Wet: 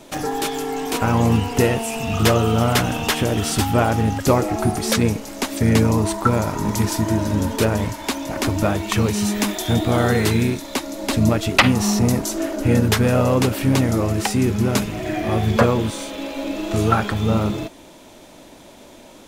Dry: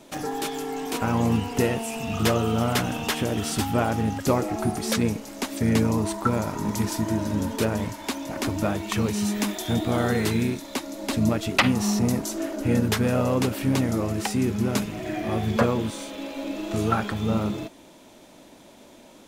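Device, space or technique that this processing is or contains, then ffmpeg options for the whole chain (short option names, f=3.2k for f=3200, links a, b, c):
low shelf boost with a cut just above: -af "lowshelf=f=90:g=5.5,equalizer=f=210:t=o:w=0.96:g=-3,volume=6dB"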